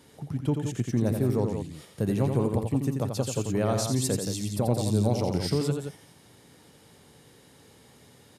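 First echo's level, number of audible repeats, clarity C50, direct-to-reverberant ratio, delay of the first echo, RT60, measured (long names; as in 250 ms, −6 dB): −6.0 dB, 2, no reverb audible, no reverb audible, 86 ms, no reverb audible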